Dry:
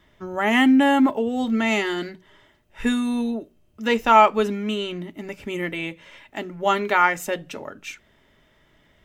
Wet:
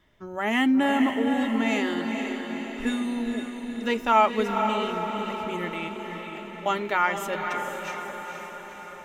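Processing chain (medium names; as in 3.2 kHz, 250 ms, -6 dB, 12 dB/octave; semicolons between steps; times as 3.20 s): 5.88–6.66 s: compression, threshold -39 dBFS, peak gain reduction 14.5 dB; echo that smears into a reverb 480 ms, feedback 61%, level -5.5 dB; trim -5.5 dB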